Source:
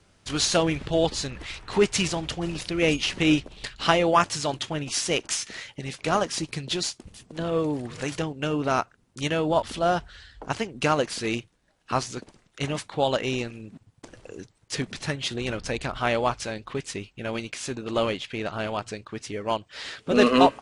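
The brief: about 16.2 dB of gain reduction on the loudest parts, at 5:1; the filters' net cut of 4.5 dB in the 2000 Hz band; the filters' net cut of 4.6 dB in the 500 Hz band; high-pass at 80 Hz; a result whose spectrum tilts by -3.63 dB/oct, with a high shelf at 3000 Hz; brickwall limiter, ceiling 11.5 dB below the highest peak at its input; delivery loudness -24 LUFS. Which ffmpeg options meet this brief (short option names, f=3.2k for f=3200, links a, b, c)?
-af "highpass=80,equalizer=f=500:t=o:g=-5.5,equalizer=f=2k:t=o:g=-9,highshelf=f=3k:g=6,acompressor=threshold=-34dB:ratio=5,volume=16.5dB,alimiter=limit=-13dB:level=0:latency=1"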